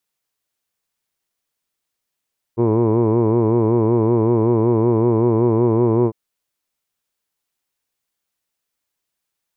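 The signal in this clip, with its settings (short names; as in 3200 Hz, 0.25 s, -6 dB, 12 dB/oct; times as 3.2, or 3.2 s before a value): formant vowel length 3.55 s, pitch 113 Hz, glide +0.5 st, F1 390 Hz, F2 990 Hz, F3 2300 Hz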